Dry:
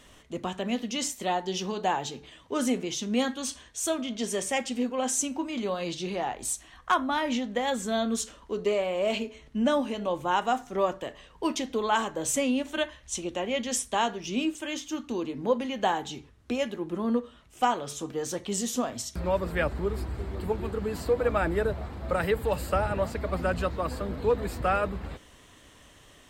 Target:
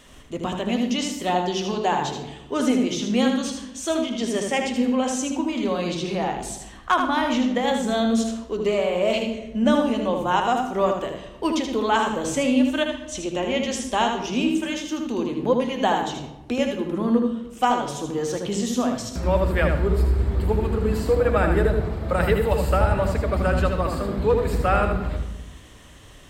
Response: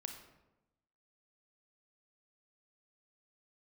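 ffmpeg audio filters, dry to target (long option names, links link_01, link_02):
-filter_complex "[0:a]acrossover=split=5700[link_01][link_02];[link_02]acompressor=threshold=-43dB:ratio=4:attack=1:release=60[link_03];[link_01][link_03]amix=inputs=2:normalize=0,asplit=2[link_04][link_05];[1:a]atrim=start_sample=2205,lowshelf=frequency=260:gain=11.5,adelay=78[link_06];[link_05][link_06]afir=irnorm=-1:irlink=0,volume=-2.5dB[link_07];[link_04][link_07]amix=inputs=2:normalize=0,volume=4dB"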